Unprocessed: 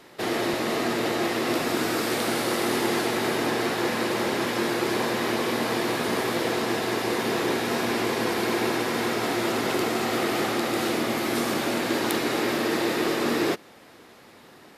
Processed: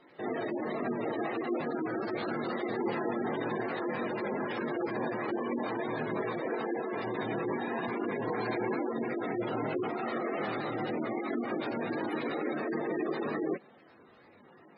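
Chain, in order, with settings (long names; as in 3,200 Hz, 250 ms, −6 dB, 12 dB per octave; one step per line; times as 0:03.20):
multi-voice chorus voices 4, 0.43 Hz, delay 22 ms, depth 3.4 ms
gate on every frequency bin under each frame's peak −15 dB strong
level −3.5 dB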